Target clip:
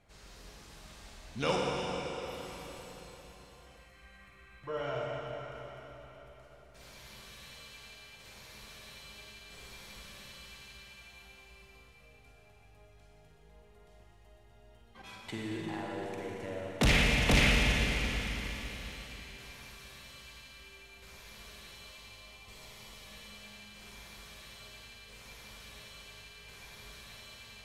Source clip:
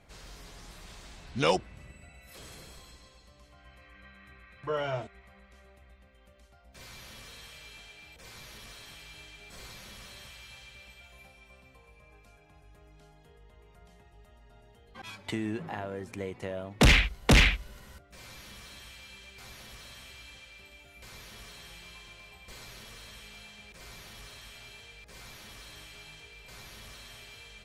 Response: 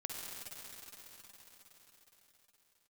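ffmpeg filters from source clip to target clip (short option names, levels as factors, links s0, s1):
-filter_complex "[0:a]asettb=1/sr,asplit=3[s0][s1][s2];[s0]atrim=end=21.744[s3];[s1]atrim=start=21.74:end=23.04,asetpts=PTS-STARTPTS,afade=t=in:d=0.004:c=qsin,afade=t=out:st=1.296:d=0.004:c=qsin,bandreject=f=1600:w=5[s4];[s2]atrim=start=23.036[s5];[s3][s4]acrossfade=d=0.004:c1=hsin:c2=qsin[s6];[s6][s5]acrossfade=d=0.004:c1=qsin:c2=hsin[s7];[1:a]atrim=start_sample=2205,asetrate=52920,aresample=44100[s8];[s7][s8]afir=irnorm=-1:irlink=0,volume=0.891"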